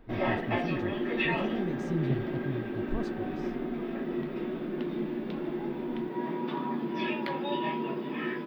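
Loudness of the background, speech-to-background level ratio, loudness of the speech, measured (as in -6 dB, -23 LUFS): -33.0 LUFS, -4.5 dB, -37.5 LUFS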